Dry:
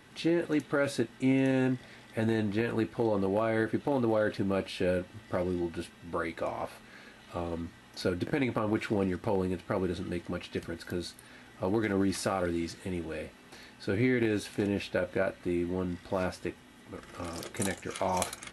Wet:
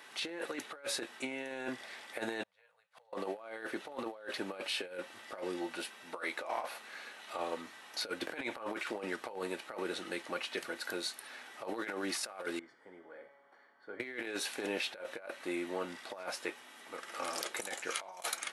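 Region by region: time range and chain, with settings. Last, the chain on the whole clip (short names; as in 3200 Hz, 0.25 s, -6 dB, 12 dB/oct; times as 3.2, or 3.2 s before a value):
2.43–3.13 elliptic band-stop 170–500 Hz + flipped gate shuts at -36 dBFS, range -34 dB
12.59–14 polynomial smoothing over 41 samples + resonator 140 Hz, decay 1.2 s, mix 80%
whole clip: HPF 620 Hz 12 dB/oct; negative-ratio compressor -39 dBFS, ratio -0.5; gain +1 dB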